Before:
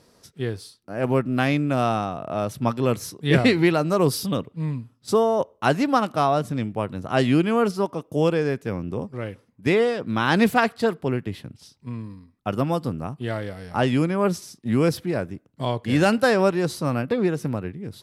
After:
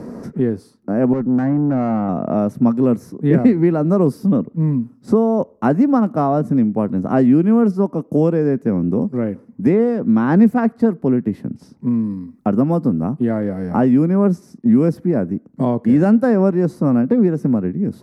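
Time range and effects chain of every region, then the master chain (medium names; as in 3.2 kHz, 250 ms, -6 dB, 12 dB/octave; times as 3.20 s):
1.13–2.09 s: steep low-pass 1.9 kHz 48 dB/octave + valve stage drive 23 dB, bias 0.7
whole clip: FFT filter 110 Hz 0 dB, 230 Hz +14 dB, 330 Hz +7 dB, 2 kHz -6 dB, 3.3 kHz -20 dB, 5.7 kHz -11 dB; three bands compressed up and down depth 70%; trim -1 dB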